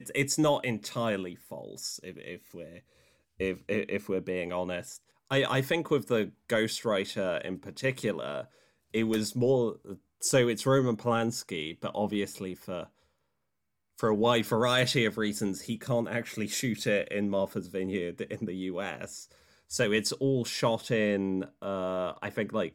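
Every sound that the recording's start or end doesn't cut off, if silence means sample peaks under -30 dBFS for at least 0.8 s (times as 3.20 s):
3.40–12.83 s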